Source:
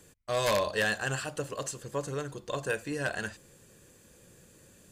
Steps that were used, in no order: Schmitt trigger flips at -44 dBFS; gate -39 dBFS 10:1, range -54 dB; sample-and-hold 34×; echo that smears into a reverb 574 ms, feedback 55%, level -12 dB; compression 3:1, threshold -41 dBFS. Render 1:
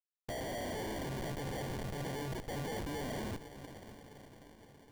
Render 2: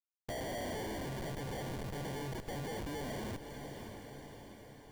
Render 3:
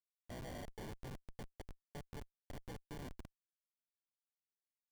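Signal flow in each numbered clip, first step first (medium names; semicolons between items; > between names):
Schmitt trigger > gate > compression > echo that smears into a reverb > sample-and-hold; Schmitt trigger > gate > sample-and-hold > echo that smears into a reverb > compression; compression > echo that smears into a reverb > gate > sample-and-hold > Schmitt trigger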